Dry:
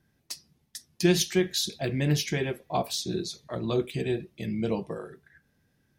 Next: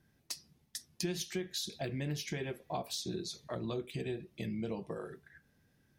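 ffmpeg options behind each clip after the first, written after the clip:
-af "acompressor=threshold=0.0178:ratio=4,volume=0.891"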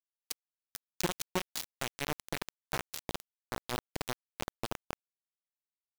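-af "acrusher=bits=4:mix=0:aa=0.000001,volume=1.33"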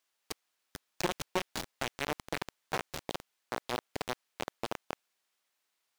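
-filter_complex "[0:a]asplit=2[s0][s1];[s1]highpass=f=720:p=1,volume=20,asoftclip=type=tanh:threshold=0.0891[s2];[s0][s2]amix=inputs=2:normalize=0,lowpass=f=4700:p=1,volume=0.501"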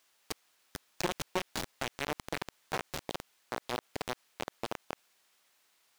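-af "alimiter=level_in=2.66:limit=0.0631:level=0:latency=1:release=51,volume=0.376,volume=3.35"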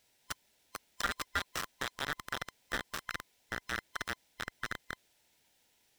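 -af "afftfilt=real='real(if(lt(b,960),b+48*(1-2*mod(floor(b/48),2)),b),0)':imag='imag(if(lt(b,960),b+48*(1-2*mod(floor(b/48),2)),b),0)':win_size=2048:overlap=0.75,volume=0.891"

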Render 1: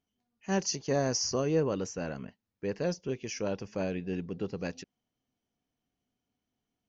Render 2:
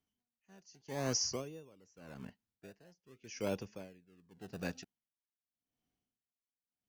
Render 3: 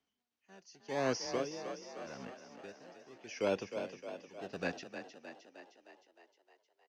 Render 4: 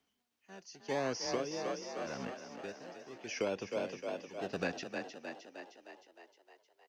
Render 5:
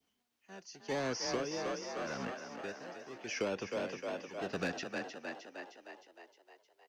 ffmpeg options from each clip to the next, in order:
-filter_complex "[0:a]acrossover=split=300|550|1200[s0][s1][s2][s3];[s1]acrusher=samples=28:mix=1:aa=0.000001:lfo=1:lforange=28:lforate=0.48[s4];[s0][s4][s2][s3]amix=inputs=4:normalize=0,aeval=exprs='val(0)*pow(10,-28*(0.5-0.5*cos(2*PI*0.85*n/s))/20)':c=same,volume=0.75"
-filter_complex "[0:a]acrossover=split=260 6500:gain=0.251 1 0.0631[s0][s1][s2];[s0][s1][s2]amix=inputs=3:normalize=0,acrossover=split=3800[s3][s4];[s4]acompressor=threshold=0.00178:ratio=4:attack=1:release=60[s5];[s3][s5]amix=inputs=2:normalize=0,asplit=9[s6][s7][s8][s9][s10][s11][s12][s13][s14];[s7]adelay=309,afreqshift=32,volume=0.355[s15];[s8]adelay=618,afreqshift=64,volume=0.216[s16];[s9]adelay=927,afreqshift=96,volume=0.132[s17];[s10]adelay=1236,afreqshift=128,volume=0.0804[s18];[s11]adelay=1545,afreqshift=160,volume=0.049[s19];[s12]adelay=1854,afreqshift=192,volume=0.0299[s20];[s13]adelay=2163,afreqshift=224,volume=0.0182[s21];[s14]adelay=2472,afreqshift=256,volume=0.0111[s22];[s6][s15][s16][s17][s18][s19][s20][s21][s22]amix=inputs=9:normalize=0,volume=1.88"
-af "acompressor=threshold=0.0158:ratio=10,volume=1.88"
-filter_complex "[0:a]adynamicequalizer=threshold=0.00178:dfrequency=1400:dqfactor=1.1:tfrequency=1400:tqfactor=1.1:attack=5:release=100:ratio=0.375:range=3:mode=boostabove:tftype=bell,acrossover=split=450|2900[s0][s1][s2];[s1]asoftclip=type=tanh:threshold=0.0126[s3];[s0][s3][s2]amix=inputs=3:normalize=0,volume=1.12"

